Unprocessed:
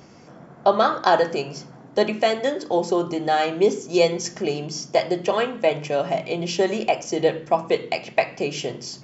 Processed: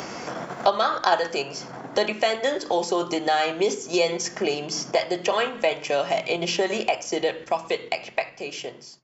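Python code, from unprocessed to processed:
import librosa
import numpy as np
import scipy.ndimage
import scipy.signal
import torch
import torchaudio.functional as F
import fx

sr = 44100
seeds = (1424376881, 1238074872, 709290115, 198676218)

p1 = fx.fade_out_tail(x, sr, length_s=2.69)
p2 = fx.peak_eq(p1, sr, hz=170.0, db=-10.5, octaves=3.0)
p3 = fx.level_steps(p2, sr, step_db=17)
p4 = p2 + (p3 * librosa.db_to_amplitude(-0.5))
p5 = fx.hum_notches(p4, sr, base_hz=50, count=3)
y = fx.band_squash(p5, sr, depth_pct=70)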